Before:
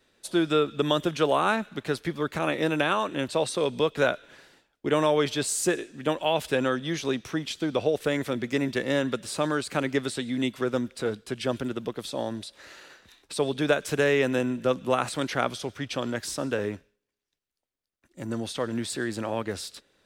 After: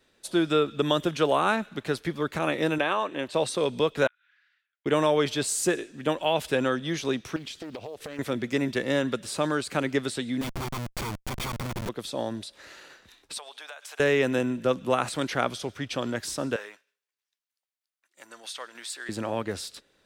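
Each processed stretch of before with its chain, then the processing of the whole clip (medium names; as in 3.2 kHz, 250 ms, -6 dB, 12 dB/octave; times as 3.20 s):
2.78–3.34 s: tone controls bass -10 dB, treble -8 dB + band-stop 1.4 kHz, Q 9.9
4.07–4.86 s: steep high-pass 1.5 kHz + compression 8:1, threshold -52 dBFS + tape spacing loss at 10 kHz 41 dB
7.36–8.19 s: compression 16:1, threshold -33 dBFS + short-mantissa float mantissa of 4-bit + loudspeaker Doppler distortion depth 0.47 ms
10.41–11.89 s: comb filter that takes the minimum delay 0.88 ms + Schmitt trigger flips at -41 dBFS
13.38–14.00 s: Chebyshev high-pass 770 Hz, order 3 + compression, threshold -39 dBFS
16.56–19.09 s: high-pass 1 kHz + tremolo saw down 3.2 Hz, depth 40%
whole clip: none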